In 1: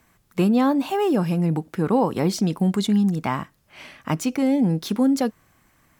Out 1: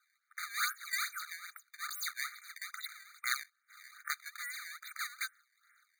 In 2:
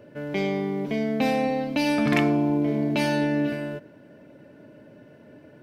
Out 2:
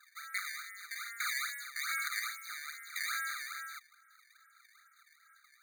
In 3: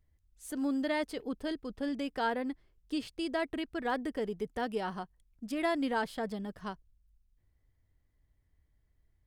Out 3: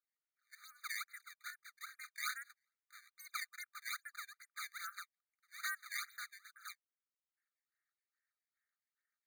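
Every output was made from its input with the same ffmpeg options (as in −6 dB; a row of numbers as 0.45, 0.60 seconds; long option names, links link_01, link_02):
-af "highpass=frequency=460:width_type=q:width=0.5412,highpass=frequency=460:width_type=q:width=1.307,lowpass=frequency=3200:width_type=q:width=0.5176,lowpass=frequency=3200:width_type=q:width=0.7071,lowpass=frequency=3200:width_type=q:width=1.932,afreqshift=-140,acrusher=samples=19:mix=1:aa=0.000001:lfo=1:lforange=30.4:lforate=2.4,afftfilt=real='re*eq(mod(floor(b*sr/1024/1200),2),1)':imag='im*eq(mod(floor(b*sr/1024/1200),2),1)':win_size=1024:overlap=0.75"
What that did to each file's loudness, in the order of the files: −17.0, −13.0, −10.5 LU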